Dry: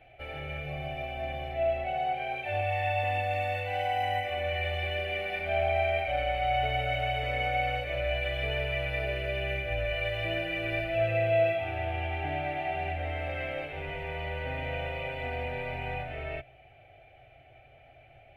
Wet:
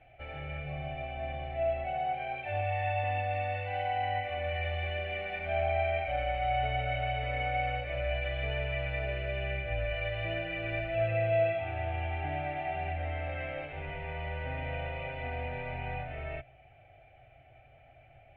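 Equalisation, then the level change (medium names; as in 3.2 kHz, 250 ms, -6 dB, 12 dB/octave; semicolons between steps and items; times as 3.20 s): distance through air 310 m; peaking EQ 400 Hz -5.5 dB 0.87 oct; 0.0 dB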